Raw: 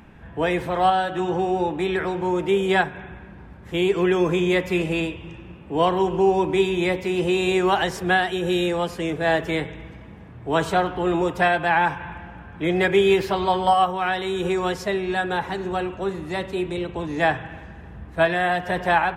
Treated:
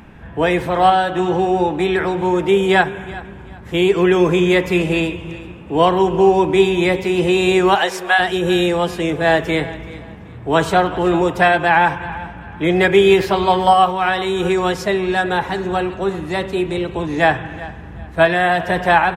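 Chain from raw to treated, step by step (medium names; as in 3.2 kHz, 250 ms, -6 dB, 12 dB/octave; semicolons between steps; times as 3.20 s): 7.75–8.18 s: high-pass 340 Hz -> 700 Hz 24 dB/octave; feedback delay 382 ms, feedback 28%, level -18 dB; trim +6 dB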